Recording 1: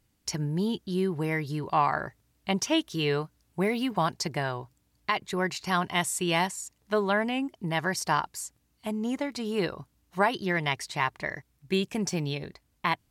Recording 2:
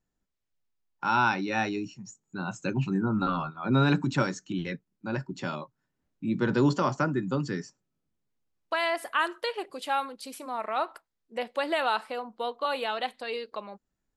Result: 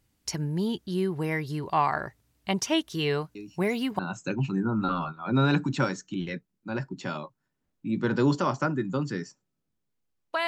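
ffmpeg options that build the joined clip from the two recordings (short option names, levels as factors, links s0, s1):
-filter_complex "[1:a]asplit=2[s0][s1];[0:a]apad=whole_dur=10.47,atrim=end=10.47,atrim=end=3.992[s2];[s1]atrim=start=2.368:end=8.85[s3];[s0]atrim=start=1.73:end=2.37,asetpts=PTS-STARTPTS,volume=0.376,afade=t=in:d=0.004:c=hsin,afade=t=out:st=0.636:d=0.004:c=hsin,adelay=3350[s4];[s2][s3]acrossfade=d=0.004:c1=hsin:c2=hsin[s5];[s5][s4]amix=inputs=2:normalize=0"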